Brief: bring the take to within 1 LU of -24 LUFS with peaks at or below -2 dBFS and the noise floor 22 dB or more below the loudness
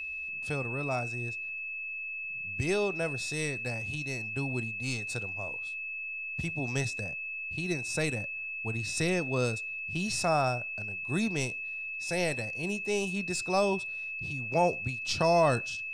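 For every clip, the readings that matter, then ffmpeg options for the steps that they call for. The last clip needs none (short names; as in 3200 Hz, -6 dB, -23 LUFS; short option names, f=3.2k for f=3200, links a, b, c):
steady tone 2600 Hz; tone level -35 dBFS; loudness -31.0 LUFS; peak -14.5 dBFS; loudness target -24.0 LUFS
-> -af "bandreject=f=2.6k:w=30"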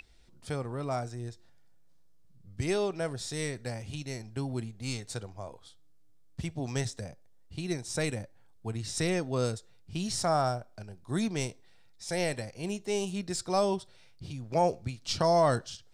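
steady tone none; loudness -32.5 LUFS; peak -15.0 dBFS; loudness target -24.0 LUFS
-> -af "volume=8.5dB"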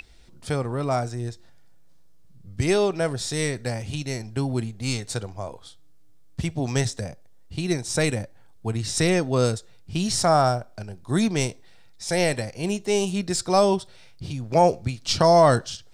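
loudness -24.0 LUFS; peak -6.5 dBFS; noise floor -47 dBFS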